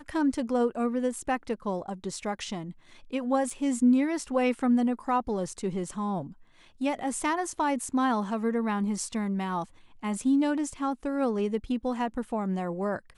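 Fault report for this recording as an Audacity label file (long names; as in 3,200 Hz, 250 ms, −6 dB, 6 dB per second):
3.500000	3.500000	drop-out 3.5 ms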